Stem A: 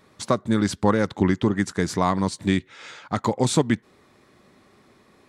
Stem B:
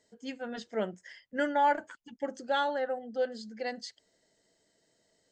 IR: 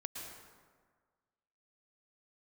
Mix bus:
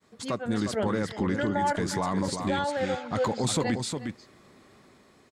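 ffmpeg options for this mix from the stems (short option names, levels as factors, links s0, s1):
-filter_complex "[0:a]bandreject=f=5900:w=23,dynaudnorm=f=430:g=5:m=3.76,alimiter=limit=0.282:level=0:latency=1:release=11,volume=0.501,asplit=2[s0][s1];[s1]volume=0.447[s2];[1:a]volume=1.33,asplit=2[s3][s4];[s4]volume=0.168[s5];[s2][s5]amix=inputs=2:normalize=0,aecho=0:1:358:1[s6];[s0][s3][s6]amix=inputs=3:normalize=0,agate=range=0.0224:threshold=0.001:ratio=3:detection=peak,alimiter=limit=0.133:level=0:latency=1:release=73"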